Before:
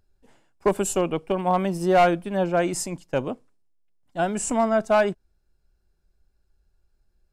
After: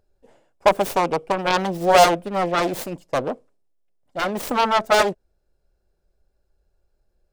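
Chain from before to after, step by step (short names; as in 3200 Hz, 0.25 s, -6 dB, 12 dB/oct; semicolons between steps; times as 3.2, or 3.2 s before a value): self-modulated delay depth 0.92 ms; bell 550 Hz +11.5 dB 1 oct; gain -1.5 dB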